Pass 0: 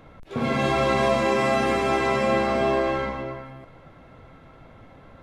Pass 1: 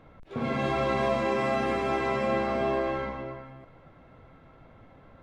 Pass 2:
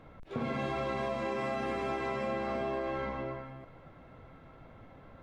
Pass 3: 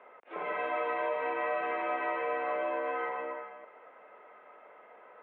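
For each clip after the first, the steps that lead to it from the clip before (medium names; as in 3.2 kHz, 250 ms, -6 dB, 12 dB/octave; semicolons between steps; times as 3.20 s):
treble shelf 5.2 kHz -10 dB; trim -5 dB
compression, threshold -31 dBFS, peak gain reduction 9 dB
mistuned SSB -63 Hz 550–2800 Hz; trim +4.5 dB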